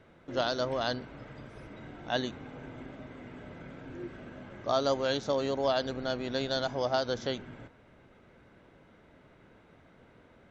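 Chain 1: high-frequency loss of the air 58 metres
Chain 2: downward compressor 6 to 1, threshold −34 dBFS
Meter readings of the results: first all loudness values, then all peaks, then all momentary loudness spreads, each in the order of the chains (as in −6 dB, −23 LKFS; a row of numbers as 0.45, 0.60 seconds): −32.5, −40.5 LKFS; −15.5, −23.0 dBFS; 17, 21 LU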